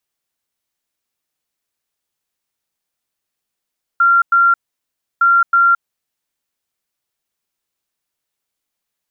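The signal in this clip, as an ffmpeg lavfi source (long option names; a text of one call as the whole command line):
ffmpeg -f lavfi -i "aevalsrc='0.398*sin(2*PI*1380*t)*clip(min(mod(mod(t,1.21),0.32),0.22-mod(mod(t,1.21),0.32))/0.005,0,1)*lt(mod(t,1.21),0.64)':duration=2.42:sample_rate=44100" out.wav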